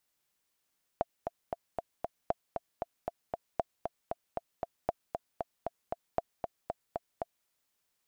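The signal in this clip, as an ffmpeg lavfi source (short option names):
-f lavfi -i "aevalsrc='pow(10,(-15-5.5*gte(mod(t,5*60/232),60/232))/20)*sin(2*PI*682*mod(t,60/232))*exp(-6.91*mod(t,60/232)/0.03)':d=6.46:s=44100"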